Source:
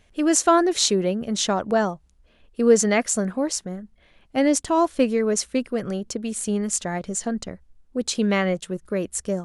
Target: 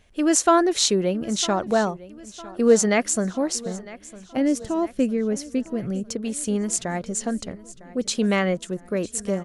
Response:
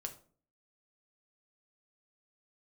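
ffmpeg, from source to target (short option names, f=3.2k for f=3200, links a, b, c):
-filter_complex "[0:a]asettb=1/sr,asplit=3[a][b][c];[a]atrim=end=4.374[d];[b]atrim=start=4.37:end=6.07,asetpts=PTS-STARTPTS,afade=t=in:d=0.004:c=qsin,afade=t=out:st=1.696:d=0.004:c=qsin,equalizer=f=125:t=o:w=1:g=6,equalizer=f=500:t=o:w=1:g=-3,equalizer=f=1k:t=o:w=1:g=-10,equalizer=f=2k:t=o:w=1:g=-4,equalizer=f=4k:t=o:w=1:g=-7,equalizer=f=8k:t=o:w=1:g=-10[e];[c]atrim=start=6.066[f];[d][e]acrossfade=d=0.004:c1=hsin:c2=qsin[g];[g][f]acrossfade=d=0.004:c1=qsin:c2=hsin,aecho=1:1:955|1910|2865|3820:0.112|0.0595|0.0315|0.0167"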